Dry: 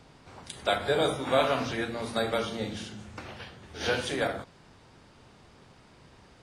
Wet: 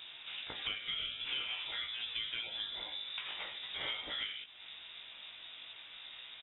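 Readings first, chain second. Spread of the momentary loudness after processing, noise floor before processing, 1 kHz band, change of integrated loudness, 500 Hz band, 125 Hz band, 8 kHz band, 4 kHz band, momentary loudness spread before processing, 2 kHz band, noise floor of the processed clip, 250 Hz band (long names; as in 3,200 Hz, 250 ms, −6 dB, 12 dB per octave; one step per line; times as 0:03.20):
11 LU, −57 dBFS, −19.0 dB, −10.0 dB, −28.0 dB, −24.5 dB, below −35 dB, +1.0 dB, 17 LU, −7.5 dB, −53 dBFS, −26.5 dB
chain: parametric band 1,400 Hz +2.5 dB 0.77 octaves
double-tracking delay 18 ms −4 dB
voice inversion scrambler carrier 3,700 Hz
low-shelf EQ 390 Hz −9 dB
downward compressor 5 to 1, threshold −42 dBFS, peak gain reduction 21 dB
level +3 dB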